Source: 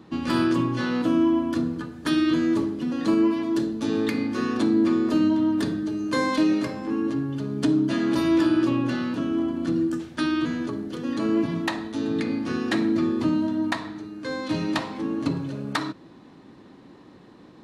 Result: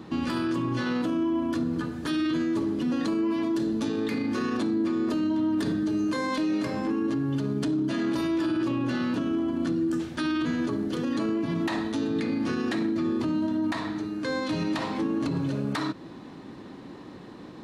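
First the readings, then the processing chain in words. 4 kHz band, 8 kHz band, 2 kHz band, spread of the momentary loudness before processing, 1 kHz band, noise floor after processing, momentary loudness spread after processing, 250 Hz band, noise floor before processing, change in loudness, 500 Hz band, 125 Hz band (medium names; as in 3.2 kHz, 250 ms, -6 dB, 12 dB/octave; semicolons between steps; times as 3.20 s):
-3.0 dB, no reading, -3.0 dB, 8 LU, -3.0 dB, -43 dBFS, 5 LU, -3.0 dB, -49 dBFS, -3.0 dB, -3.0 dB, -1.5 dB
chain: in parallel at -1 dB: compression, threshold -33 dBFS, peak gain reduction 15 dB; on the sum: peak limiter -20 dBFS, peak gain reduction 9.5 dB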